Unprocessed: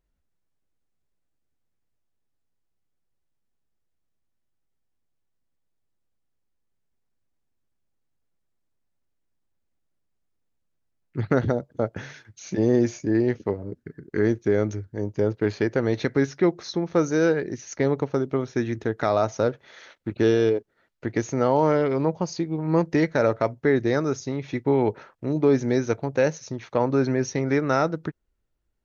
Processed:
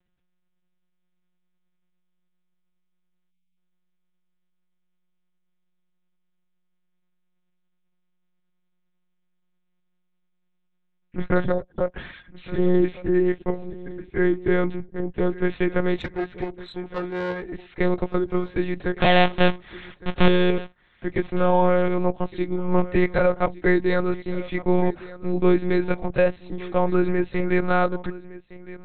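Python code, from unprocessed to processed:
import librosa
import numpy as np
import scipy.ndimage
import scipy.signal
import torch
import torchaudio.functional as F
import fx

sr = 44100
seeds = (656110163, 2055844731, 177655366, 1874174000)

p1 = fx.halfwave_hold(x, sr, at=(19.01, 20.27))
p2 = fx.high_shelf(p1, sr, hz=2900.0, db=9.5)
p3 = fx.lpc_monotone(p2, sr, seeds[0], pitch_hz=180.0, order=8)
p4 = fx.tube_stage(p3, sr, drive_db=19.0, bias=0.55, at=(15.97, 17.54))
p5 = p4 + 0.38 * np.pad(p4, (int(5.6 * sr / 1000.0), 0))[:len(p4)]
p6 = p5 + fx.echo_single(p5, sr, ms=1162, db=-18.0, dry=0)
p7 = fx.spec_erase(p6, sr, start_s=3.31, length_s=0.26, low_hz=270.0, high_hz=2000.0)
y = p7 * 10.0 ** (-1.0 / 20.0)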